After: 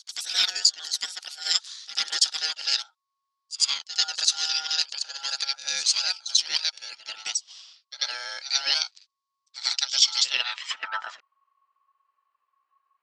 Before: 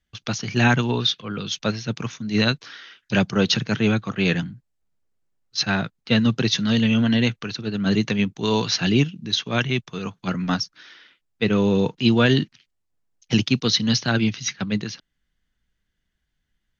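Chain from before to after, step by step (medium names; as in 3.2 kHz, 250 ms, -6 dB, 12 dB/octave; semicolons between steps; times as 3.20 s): gliding tape speed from 164% -> 94%; peaking EQ 150 Hz -15 dB 2.3 oct; ring modulator 1.1 kHz; band-pass sweep 4.7 kHz -> 1.3 kHz, 10.14–11.08 s; pre-echo 91 ms -14 dB; trim +9 dB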